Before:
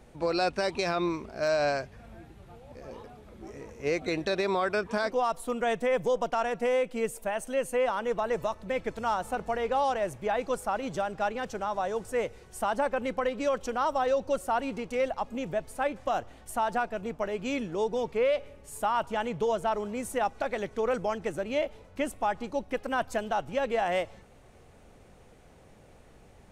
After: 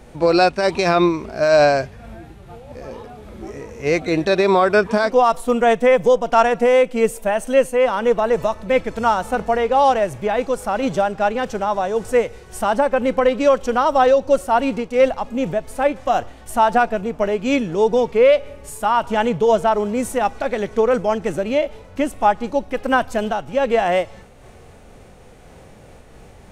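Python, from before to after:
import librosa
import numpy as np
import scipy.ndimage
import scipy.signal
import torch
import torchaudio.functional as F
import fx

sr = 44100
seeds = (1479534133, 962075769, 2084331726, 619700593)

y = fx.hpss(x, sr, part='harmonic', gain_db=7)
y = fx.am_noise(y, sr, seeds[0], hz=5.7, depth_pct=60)
y = y * librosa.db_to_amplitude(9.0)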